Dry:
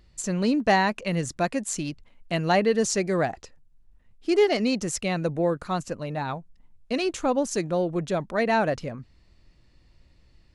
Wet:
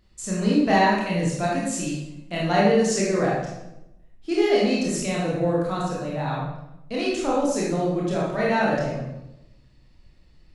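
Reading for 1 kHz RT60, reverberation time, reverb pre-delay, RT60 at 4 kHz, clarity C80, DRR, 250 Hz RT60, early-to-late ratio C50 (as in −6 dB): 0.80 s, 0.90 s, 21 ms, 0.70 s, 4.0 dB, −5.5 dB, 1.2 s, 0.0 dB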